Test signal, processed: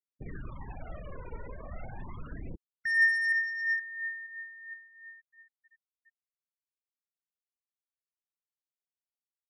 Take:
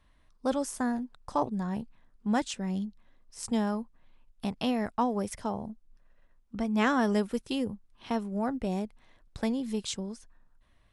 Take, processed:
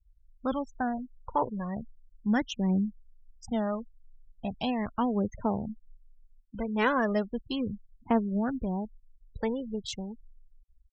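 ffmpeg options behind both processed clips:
-af "adynamicsmooth=sensitivity=7.5:basefreq=2800,aphaser=in_gain=1:out_gain=1:delay=2.2:decay=0.5:speed=0.37:type=triangular,afftfilt=real='re*gte(hypot(re,im),0.0141)':imag='im*gte(hypot(re,im),0.0141)':win_size=1024:overlap=0.75"

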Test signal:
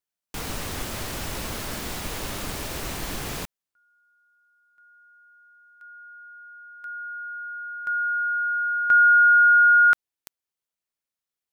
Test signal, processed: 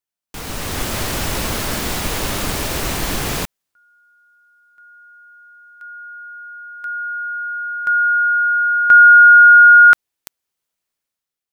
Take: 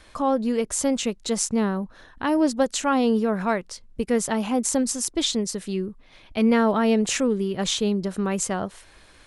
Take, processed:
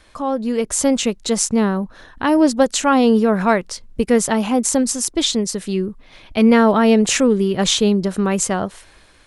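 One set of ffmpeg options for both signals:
-af "dynaudnorm=f=140:g=9:m=3.16"

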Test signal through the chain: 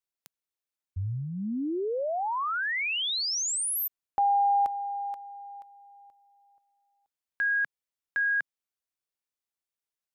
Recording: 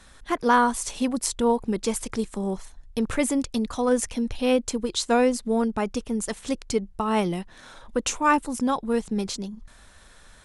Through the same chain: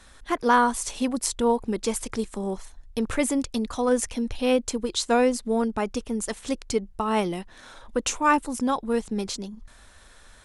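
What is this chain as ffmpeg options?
-af "equalizer=f=160:t=o:w=0.6:g=-5.5"

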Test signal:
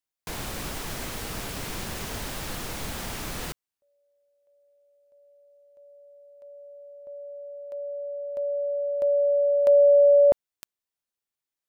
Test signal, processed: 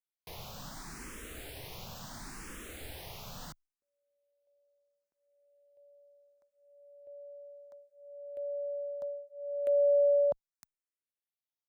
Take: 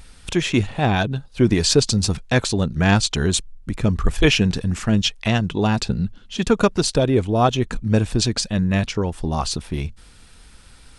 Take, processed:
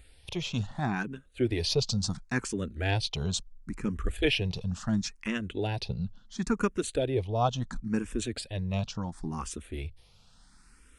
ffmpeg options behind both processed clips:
-filter_complex "[0:a]asplit=2[s0][s1];[s1]afreqshift=0.72[s2];[s0][s2]amix=inputs=2:normalize=1,volume=0.376"

